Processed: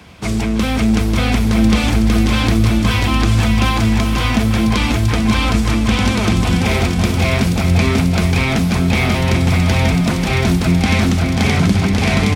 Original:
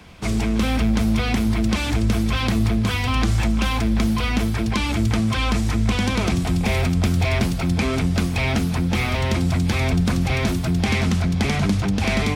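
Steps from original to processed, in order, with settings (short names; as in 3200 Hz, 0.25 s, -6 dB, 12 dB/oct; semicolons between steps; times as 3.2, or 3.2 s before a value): HPF 50 Hz; bouncing-ball echo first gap 0.54 s, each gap 0.7×, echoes 5; gain +4 dB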